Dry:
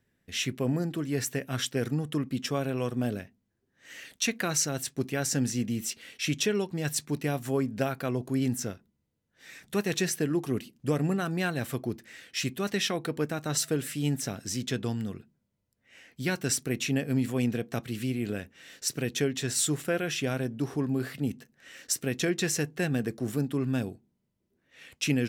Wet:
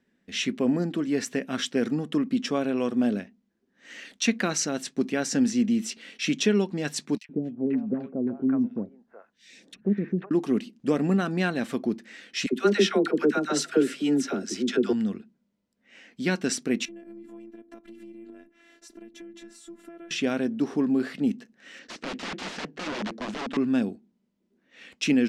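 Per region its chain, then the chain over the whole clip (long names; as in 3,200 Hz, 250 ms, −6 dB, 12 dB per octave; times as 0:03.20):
0:07.17–0:10.31: treble cut that deepens with the level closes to 310 Hz, closed at −25 dBFS + three-band delay without the direct sound highs, lows, mids 120/490 ms, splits 670/2,300 Hz
0:12.46–0:14.93: low-shelf EQ 120 Hz −11 dB + hollow resonant body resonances 370/1,400 Hz, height 11 dB, ringing for 30 ms + all-pass dispersion lows, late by 69 ms, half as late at 660 Hz
0:16.85–0:20.11: parametric band 4,700 Hz −13 dB 2.4 octaves + downward compressor 12 to 1, threshold −41 dBFS + phases set to zero 339 Hz
0:21.79–0:23.57: wrap-around overflow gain 29.5 dB + high-frequency loss of the air 76 metres + highs frequency-modulated by the lows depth 0.42 ms
whole clip: low-pass filter 6,100 Hz 12 dB per octave; low shelf with overshoot 160 Hz −8.5 dB, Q 3; level +2.5 dB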